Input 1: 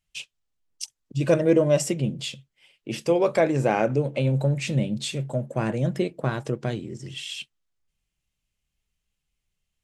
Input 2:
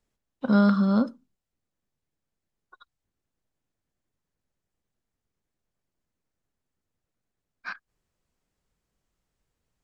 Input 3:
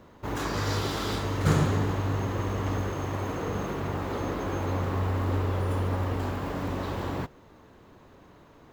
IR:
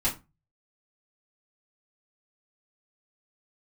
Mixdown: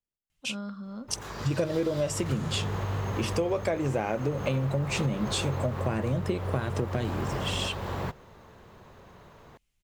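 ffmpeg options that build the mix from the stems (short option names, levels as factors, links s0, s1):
-filter_complex "[0:a]adelay=300,volume=1.33[s0];[1:a]volume=0.126,asplit=2[s1][s2];[2:a]equalizer=f=290:t=o:w=0.36:g=-12,acompressor=threshold=0.0316:ratio=4,adelay=850,volume=1.41[s3];[s2]apad=whole_len=422177[s4];[s3][s4]sidechaincompress=threshold=0.00224:ratio=3:attack=16:release=656[s5];[s0][s1][s5]amix=inputs=3:normalize=0,acompressor=threshold=0.0631:ratio=10"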